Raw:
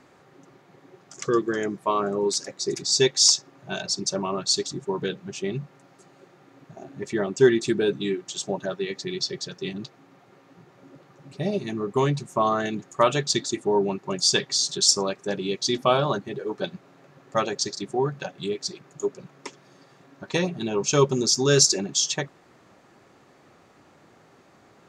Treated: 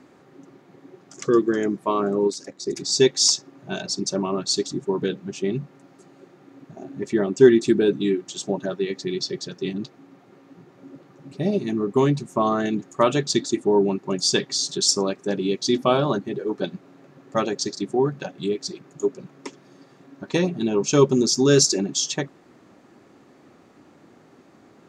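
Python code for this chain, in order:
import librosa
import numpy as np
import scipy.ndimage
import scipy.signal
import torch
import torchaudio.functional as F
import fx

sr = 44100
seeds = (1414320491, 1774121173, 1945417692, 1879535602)

y = fx.peak_eq(x, sr, hz=270.0, db=9.0, octaves=1.2)
y = fx.level_steps(y, sr, step_db=11, at=(2.27, 2.75), fade=0.02)
y = y * 10.0 ** (-1.0 / 20.0)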